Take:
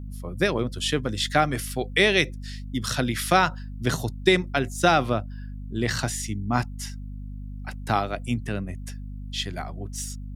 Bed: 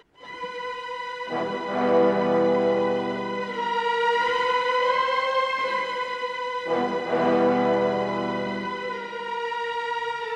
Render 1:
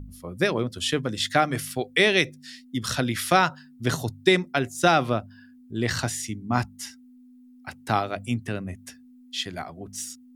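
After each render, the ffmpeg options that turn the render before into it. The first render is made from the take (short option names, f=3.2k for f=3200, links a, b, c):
-af "bandreject=f=50:t=h:w=4,bandreject=f=100:t=h:w=4,bandreject=f=150:t=h:w=4,bandreject=f=200:t=h:w=4"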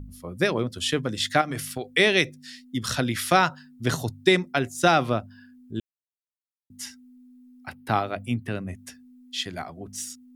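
-filter_complex "[0:a]asettb=1/sr,asplit=3[a][b][c];[a]atrim=end=1.414[d];[b]atrim=start=1.41:end=1.85,asetpts=PTS-STARTPTS,afade=t=in:d=0.004:c=qsin,afade=t=out:st=0.436:d=0.004:c=qsin,acompressor=threshold=-25dB:ratio=6:attack=3.2:release=140:knee=1:detection=peak[e];[c]atrim=start=1.846[f];[d][e]acrossfade=d=0.004:c1=hsin:c2=qsin[g];[g][f]acrossfade=d=0.004:c1=qsin:c2=hsin,asettb=1/sr,asplit=3[h][i][j];[h]atrim=end=7.694[k];[i]atrim=start=7.69:end=8.52,asetpts=PTS-STARTPTS,afade=t=in:d=0.004:c=qsin,afade=t=out:st=0.826:d=0.004:c=qsin,equalizer=f=6.8k:t=o:w=0.79:g=-11.5[l];[j]atrim=start=8.516[m];[k][l]acrossfade=d=0.004:c1=hsin:c2=qsin[n];[n][m]acrossfade=d=0.004:c1=qsin:c2=hsin,asplit=3[o][p][q];[o]atrim=end=5.8,asetpts=PTS-STARTPTS,afade=t=out:st=5.796:d=0.004:c=hsin[r];[p]atrim=start=5.8:end=6.7,asetpts=PTS-STARTPTS,volume=0[s];[q]atrim=start=6.7,asetpts=PTS-STARTPTS,afade=t=in:d=0.004:c=hsin[t];[r][s][t]concat=n=3:v=0:a=1"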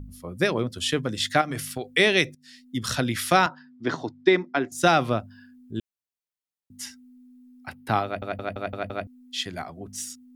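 -filter_complex "[0:a]asettb=1/sr,asplit=3[a][b][c];[a]atrim=end=3.464[d];[b]atrim=start=3.46:end=4.72,asetpts=PTS-STARTPTS,afade=t=in:d=0.004:c=qsin,afade=t=out:st=1.256:d=0.004:c=qsin,highpass=240,equalizer=f=310:t=q:w=4:g=7,equalizer=f=530:t=q:w=4:g=-3,equalizer=f=970:t=q:w=4:g=3,equalizer=f=2.8k:t=q:w=4:g=-8,equalizer=f=4k:t=q:w=4:g=-6,lowpass=f=4.5k:w=0.5412,lowpass=f=4.5k:w=1.3066[e];[c]atrim=start=4.716[f];[d][e]acrossfade=d=0.004:c1=hsin:c2=qsin[g];[g][f]acrossfade=d=0.004:c1=qsin:c2=hsin,asplit=8[h][i][j][k][l][m][n][o];[h]atrim=end=2.35,asetpts=PTS-STARTPTS,afade=t=out:st=2.346:d=0.004:c=hsin:silence=0.188365[p];[i]atrim=start=2.35:end=8.222,asetpts=PTS-STARTPTS,afade=t=in:d=0.45:silence=0.188365[q];[j]atrim=start=8.048:end=8.222[r];[k]atrim=start=8.048:end=8.222[s];[l]atrim=start=8.048:end=8.222[t];[m]atrim=start=8.048:end=8.222[u];[n]atrim=start=8.048:end=8.222[v];[o]atrim=start=9.068[w];[p][q]concat=n=2:v=0:a=1[x];[x][r]acrossfade=d=0.004:c1=hsin:c2=hsin[y];[y][s]acrossfade=d=0.004:c1=hsin:c2=hsin[z];[z][t]acrossfade=d=0.004:c1=hsin:c2=hsin[aa];[aa][u]acrossfade=d=0.004:c1=hsin:c2=hsin[ab];[ab][v]acrossfade=d=0.004:c1=hsin:c2=hsin[ac];[ac][w]acrossfade=d=0.004:c1=hsin:c2=hsin"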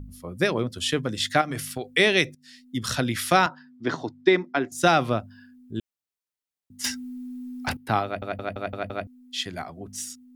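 -filter_complex "[0:a]asettb=1/sr,asplit=3[a][b][c];[a]atrim=end=6.844[d];[b]atrim=start=6.84:end=7.77,asetpts=PTS-STARTPTS,afade=t=in:d=0.004:c=qsin,afade=t=out:st=0.926:d=0.004:c=qsin,aeval=exprs='0.0944*sin(PI/2*3.55*val(0)/0.0944)':c=same[e];[c]atrim=start=7.766[f];[d][e]acrossfade=d=0.004:c1=hsin:c2=qsin[g];[g][f]acrossfade=d=0.004:c1=qsin:c2=hsin"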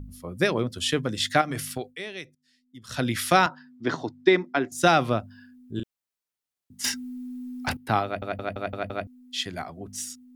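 -filter_complex "[0:a]asettb=1/sr,asplit=3[a][b][c];[a]atrim=end=5.744[d];[b]atrim=start=5.74:end=6.94,asetpts=PTS-STARTPTS,afade=t=in:d=0.004:c=qsin,afade=t=out:st=1.196:d=0.004:c=qsin,asplit=2[e][f];[f]adelay=34,volume=-4.5dB[g];[e][g]amix=inputs=2:normalize=0,atrim=end_sample=52920[h];[c]atrim=start=6.936[i];[d][h]acrossfade=d=0.004:c1=hsin:c2=qsin[j];[j][i]acrossfade=d=0.004:c1=qsin:c2=hsin,asplit=3[k][l][m];[k]atrim=end=1.96,asetpts=PTS-STARTPTS,afade=t=out:st=1.8:d=0.16:silence=0.141254[n];[l]atrim=start=1.96:end=2.88,asetpts=PTS-STARTPTS,volume=-17dB[o];[m]atrim=start=2.88,asetpts=PTS-STARTPTS,afade=t=in:d=0.16:silence=0.141254[p];[n][o][p]concat=n=3:v=0:a=1"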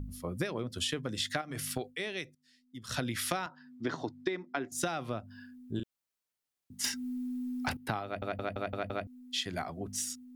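-af "acompressor=threshold=-30dB:ratio=16"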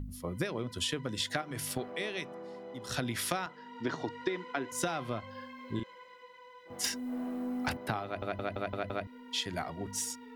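-filter_complex "[1:a]volume=-24.5dB[a];[0:a][a]amix=inputs=2:normalize=0"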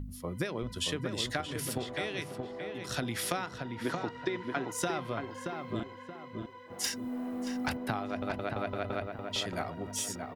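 -filter_complex "[0:a]asplit=2[a][b];[b]adelay=627,lowpass=f=1.8k:p=1,volume=-4.5dB,asplit=2[c][d];[d]adelay=627,lowpass=f=1.8k:p=1,volume=0.4,asplit=2[e][f];[f]adelay=627,lowpass=f=1.8k:p=1,volume=0.4,asplit=2[g][h];[h]adelay=627,lowpass=f=1.8k:p=1,volume=0.4,asplit=2[i][j];[j]adelay=627,lowpass=f=1.8k:p=1,volume=0.4[k];[a][c][e][g][i][k]amix=inputs=6:normalize=0"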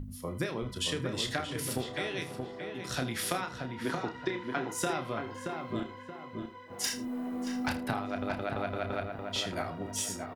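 -filter_complex "[0:a]asplit=2[a][b];[b]adelay=31,volume=-7.5dB[c];[a][c]amix=inputs=2:normalize=0,aecho=1:1:79:0.158"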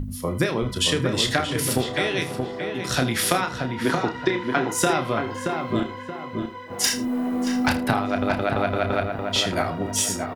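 -af "volume=11dB"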